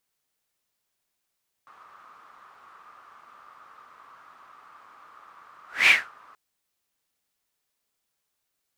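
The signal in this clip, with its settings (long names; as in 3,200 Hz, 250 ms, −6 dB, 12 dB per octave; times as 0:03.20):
pass-by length 4.68 s, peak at 0:04.21, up 0.22 s, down 0.25 s, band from 1,200 Hz, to 2,400 Hz, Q 7, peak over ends 35.5 dB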